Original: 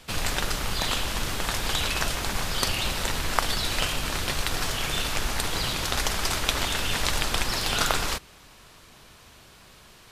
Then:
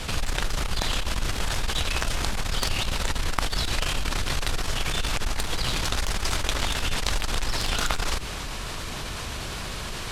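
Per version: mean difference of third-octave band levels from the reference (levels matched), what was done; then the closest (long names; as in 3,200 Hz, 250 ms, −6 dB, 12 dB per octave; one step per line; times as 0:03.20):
5.0 dB: low-pass filter 11,000 Hz 12 dB per octave
low-shelf EQ 64 Hz +10 dB
harmonic generator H 2 −10 dB, 3 −20 dB, 4 −29 dB, 6 −22 dB, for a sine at −1.5 dBFS
envelope flattener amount 70%
level −5 dB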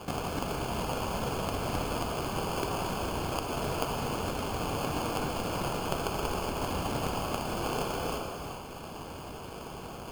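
7.5 dB: high-pass filter 79 Hz
downward compressor 4 to 1, threshold −42 dBFS, peak gain reduction 21 dB
decimation without filtering 23×
reverb whose tail is shaped and stops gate 470 ms flat, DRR 1 dB
level +7.5 dB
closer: first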